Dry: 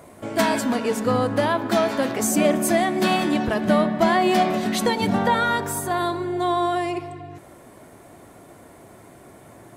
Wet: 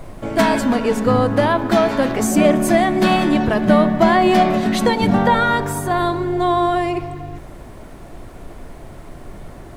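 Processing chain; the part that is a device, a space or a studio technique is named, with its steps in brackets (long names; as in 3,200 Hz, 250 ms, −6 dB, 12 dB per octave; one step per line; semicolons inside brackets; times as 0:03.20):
car interior (parametric band 140 Hz +4.5 dB 0.72 octaves; high-shelf EQ 4,700 Hz −7.5 dB; brown noise bed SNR 18 dB)
level +5 dB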